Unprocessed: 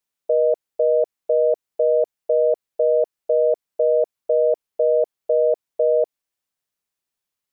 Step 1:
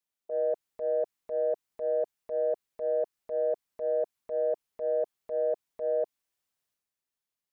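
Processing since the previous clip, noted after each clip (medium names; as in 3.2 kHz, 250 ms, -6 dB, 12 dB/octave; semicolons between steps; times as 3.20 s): dynamic bell 520 Hz, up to -4 dB, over -31 dBFS, Q 2; transient shaper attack -10 dB, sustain +6 dB; trim -6.5 dB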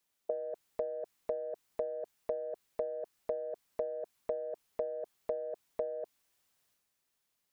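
compressor with a negative ratio -37 dBFS, ratio -1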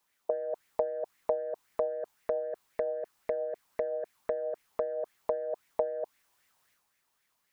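sweeping bell 3.8 Hz 860–2100 Hz +12 dB; trim +3 dB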